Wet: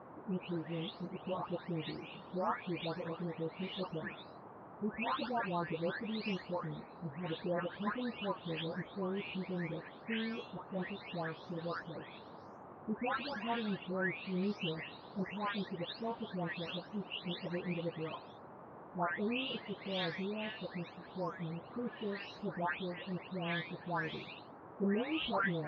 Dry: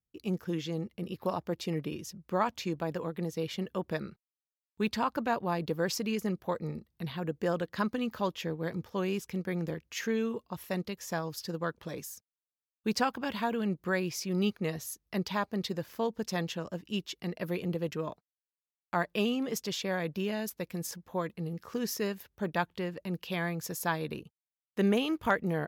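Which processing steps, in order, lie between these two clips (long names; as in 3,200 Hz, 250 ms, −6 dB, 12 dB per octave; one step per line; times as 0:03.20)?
every frequency bin delayed by itself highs late, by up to 544 ms
Butterworth low-pass 3,900 Hz 48 dB per octave
high-shelf EQ 2,200 Hz +9 dB
noise in a band 100–1,100 Hz −47 dBFS
level −6 dB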